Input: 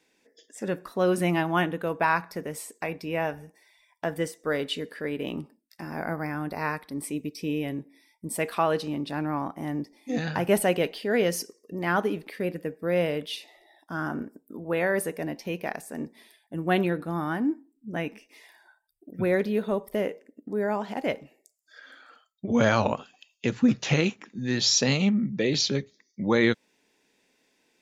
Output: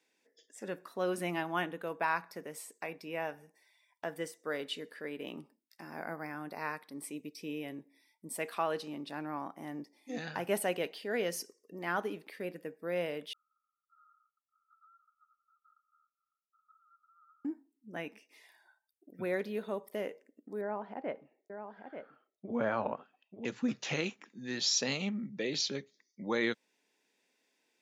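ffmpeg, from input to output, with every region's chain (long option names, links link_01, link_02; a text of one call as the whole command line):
ffmpeg -i in.wav -filter_complex "[0:a]asettb=1/sr,asplit=3[link_01][link_02][link_03];[link_01]atrim=end=13.334[link_04];[link_02]atrim=start=13.33:end=17.45,asetpts=PTS-STARTPTS,afade=type=in:duration=0.004:curve=qsin,afade=type=out:start_time=4.116:duration=0.004:curve=qsin,aeval=exprs='max(val(0),0)':channel_layout=same,asuperpass=centerf=1300:order=20:qfactor=7.1,acompressor=threshold=-59dB:ratio=2.5:attack=3.2:release=140:knee=1:detection=peak[link_05];[link_03]atrim=start=17.446[link_06];[link_04][link_05]acrossfade=duration=0.004:curve1=hsin:curve2=qsin[link_07];[link_07][link_06]acrossfade=duration=0.004:curve1=qsin:curve2=hsin,asettb=1/sr,asplit=3[link_08][link_09][link_10];[link_08]atrim=end=20.614[link_11];[link_09]atrim=start=20.61:end=23.45,asetpts=PTS-STARTPTS,afade=type=in:duration=0.004:curve=qsin,afade=type=out:start_time=2.836:duration=0.004:curve=qsin,lowpass=1500,aecho=1:1:887:0.422,atrim=end_sample=125244[link_12];[link_10]atrim=start=23.446[link_13];[link_11][link_12]acrossfade=duration=0.004:curve1=hsin:curve2=qsin[link_14];[link_14][link_13]acrossfade=duration=0.004:curve1=qsin:curve2=hsin,highpass=170,lowshelf=frequency=380:gain=-5,volume=-7.5dB" out.wav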